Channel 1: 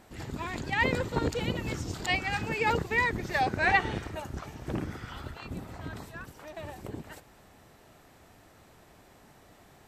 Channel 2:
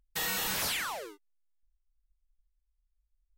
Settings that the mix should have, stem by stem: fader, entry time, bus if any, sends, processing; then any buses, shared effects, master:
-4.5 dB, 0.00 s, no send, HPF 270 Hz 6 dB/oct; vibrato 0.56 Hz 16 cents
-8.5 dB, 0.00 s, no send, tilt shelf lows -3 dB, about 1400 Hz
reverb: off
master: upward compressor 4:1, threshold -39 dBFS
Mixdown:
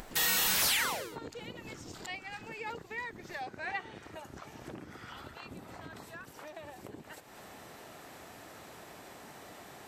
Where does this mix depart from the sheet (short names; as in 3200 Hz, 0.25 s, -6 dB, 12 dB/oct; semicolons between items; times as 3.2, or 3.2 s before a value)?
stem 1 -4.5 dB -> -13.0 dB; stem 2 -8.5 dB -> +2.0 dB